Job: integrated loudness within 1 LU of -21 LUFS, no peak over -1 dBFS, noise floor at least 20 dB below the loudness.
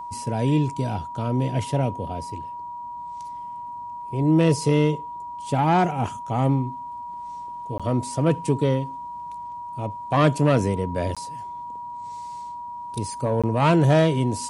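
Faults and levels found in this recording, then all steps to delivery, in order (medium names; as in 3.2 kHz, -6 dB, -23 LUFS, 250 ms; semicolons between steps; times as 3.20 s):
dropouts 3; longest dropout 16 ms; steady tone 960 Hz; tone level -32 dBFS; loudness -23.0 LUFS; peak level -7.0 dBFS; loudness target -21.0 LUFS
-> interpolate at 7.78/11.15/13.42 s, 16 ms; band-stop 960 Hz, Q 30; trim +2 dB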